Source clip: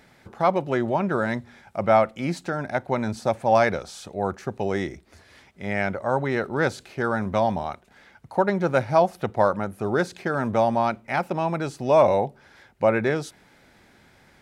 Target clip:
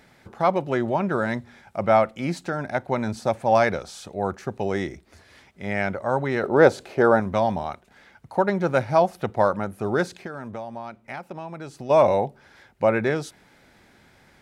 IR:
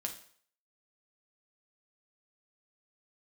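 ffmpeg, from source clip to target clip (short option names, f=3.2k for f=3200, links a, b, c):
-filter_complex "[0:a]asettb=1/sr,asplit=3[a][b][c];[a]atrim=end=6.434[d];[b]atrim=start=6.43:end=7.2,asetpts=PTS-STARTPTS,afade=t=in:d=0.004:c=qsin,afade=t=out:st=0.766:d=0.004:c=qsin,equalizer=f=550:w=0.67:g=11[e];[c]atrim=start=7.196[f];[d][e]acrossfade=d=0.004:c1=hsin:c2=qsin[g];[g][f]acrossfade=d=0.004:c1=qsin:c2=hsin,asplit=3[h][i][j];[h]afade=t=out:st=10.16:d=0.02[k];[i]acompressor=threshold=-33dB:ratio=5,afade=t=in:st=10.16:d=0.02,afade=t=out:st=11.89:d=0.02[l];[j]afade=t=in:st=11.89:d=0.02[m];[k][l][m]amix=inputs=3:normalize=0"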